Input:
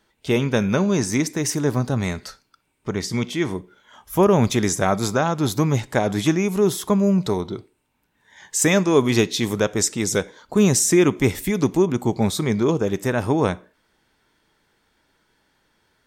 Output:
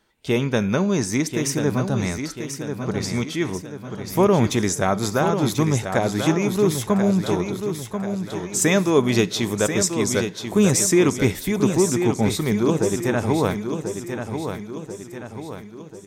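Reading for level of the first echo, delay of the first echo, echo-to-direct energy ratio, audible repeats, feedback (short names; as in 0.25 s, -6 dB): -7.5 dB, 1.038 s, -6.5 dB, 5, 49%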